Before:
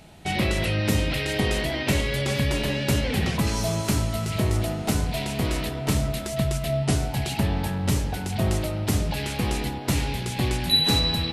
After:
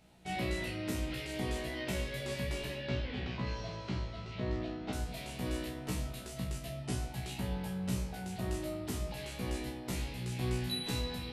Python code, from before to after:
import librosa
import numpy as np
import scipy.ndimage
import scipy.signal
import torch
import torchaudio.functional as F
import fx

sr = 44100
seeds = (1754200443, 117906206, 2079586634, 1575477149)

y = fx.lowpass(x, sr, hz=4400.0, slope=24, at=(2.75, 4.93))
y = fx.comb_fb(y, sr, f0_hz=62.0, decay_s=0.31, harmonics='all', damping=0.0, mix_pct=100)
y = F.gain(torch.from_numpy(y), -5.5).numpy()